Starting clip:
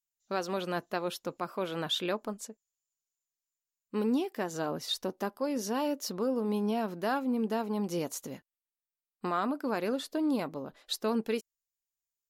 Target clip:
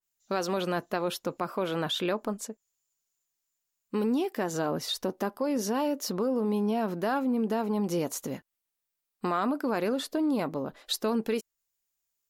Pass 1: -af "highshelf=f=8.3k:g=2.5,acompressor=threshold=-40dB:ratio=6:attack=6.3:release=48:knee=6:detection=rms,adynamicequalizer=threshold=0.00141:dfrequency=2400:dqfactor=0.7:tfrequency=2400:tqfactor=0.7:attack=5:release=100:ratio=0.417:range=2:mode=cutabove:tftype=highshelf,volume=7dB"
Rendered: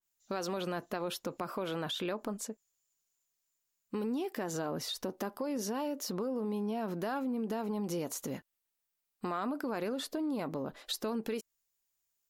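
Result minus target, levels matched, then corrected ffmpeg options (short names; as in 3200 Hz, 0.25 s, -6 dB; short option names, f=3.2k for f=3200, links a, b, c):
compressor: peak gain reduction +7.5 dB
-af "highshelf=f=8.3k:g=2.5,acompressor=threshold=-31dB:ratio=6:attack=6.3:release=48:knee=6:detection=rms,adynamicequalizer=threshold=0.00141:dfrequency=2400:dqfactor=0.7:tfrequency=2400:tqfactor=0.7:attack=5:release=100:ratio=0.417:range=2:mode=cutabove:tftype=highshelf,volume=7dB"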